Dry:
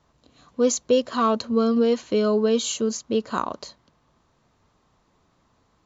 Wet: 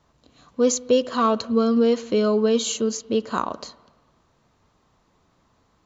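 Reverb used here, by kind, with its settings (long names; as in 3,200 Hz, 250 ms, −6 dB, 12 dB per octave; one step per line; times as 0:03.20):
spring reverb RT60 1.3 s, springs 48/56 ms, chirp 60 ms, DRR 18.5 dB
level +1 dB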